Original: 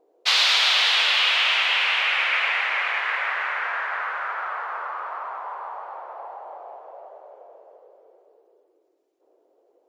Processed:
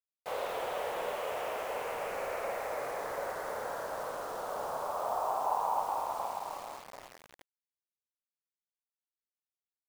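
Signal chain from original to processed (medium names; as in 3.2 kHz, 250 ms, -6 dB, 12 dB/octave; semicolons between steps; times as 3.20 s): 4.95–6.13 s: bass shelf 250 Hz +10.5 dB; crossover distortion -40 dBFS; low-pass sweep 510 Hz -> 2.2 kHz, 4.33–8.20 s; on a send: flutter echo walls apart 9.2 m, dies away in 0.47 s; on the sum: bit crusher 8-bit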